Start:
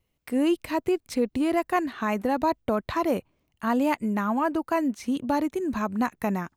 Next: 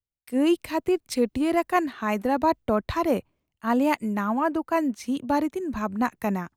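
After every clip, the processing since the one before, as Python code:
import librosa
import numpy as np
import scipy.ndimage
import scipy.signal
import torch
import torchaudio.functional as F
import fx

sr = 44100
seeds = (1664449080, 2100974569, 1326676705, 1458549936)

y = fx.band_widen(x, sr, depth_pct=70)
y = y * librosa.db_to_amplitude(1.5)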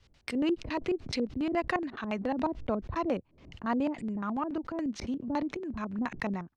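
y = fx.peak_eq(x, sr, hz=5400.0, db=8.5, octaves=1.3)
y = fx.filter_lfo_lowpass(y, sr, shape='square', hz=7.1, low_hz=370.0, high_hz=3000.0, q=0.84)
y = fx.pre_swell(y, sr, db_per_s=98.0)
y = y * librosa.db_to_amplitude(-7.0)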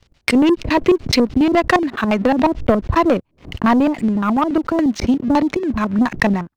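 y = fx.leveller(x, sr, passes=2)
y = fx.transient(y, sr, attack_db=6, sustain_db=-3)
y = y * librosa.db_to_amplitude(8.5)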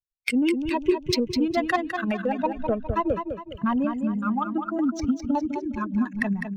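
y = fx.bin_expand(x, sr, power=2.0)
y = fx.recorder_agc(y, sr, target_db=-12.0, rise_db_per_s=13.0, max_gain_db=30)
y = fx.echo_feedback(y, sr, ms=205, feedback_pct=39, wet_db=-7.0)
y = y * librosa.db_to_amplitude(-6.5)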